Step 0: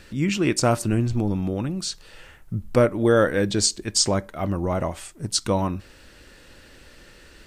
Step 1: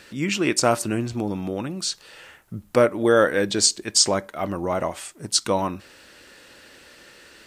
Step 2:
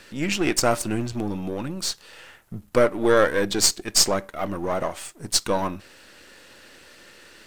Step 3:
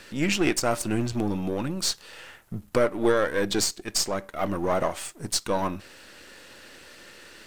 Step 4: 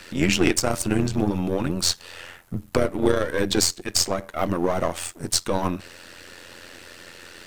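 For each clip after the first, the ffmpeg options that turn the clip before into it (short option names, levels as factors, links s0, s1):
-af "highpass=f=370:p=1,volume=1.41"
-af "aeval=exprs='if(lt(val(0),0),0.447*val(0),val(0))':c=same,volume=1.26"
-af "alimiter=limit=0.251:level=0:latency=1:release=462,volume=1.12"
-filter_complex "[0:a]acrossover=split=370|3000[s0][s1][s2];[s1]acompressor=threshold=0.0447:ratio=6[s3];[s0][s3][s2]amix=inputs=3:normalize=0,tremolo=f=87:d=0.75,volume=2.37"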